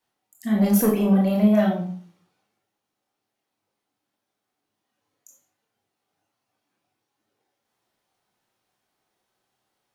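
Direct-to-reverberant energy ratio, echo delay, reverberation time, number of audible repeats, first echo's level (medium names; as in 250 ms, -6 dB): -1.5 dB, no echo, 0.45 s, no echo, no echo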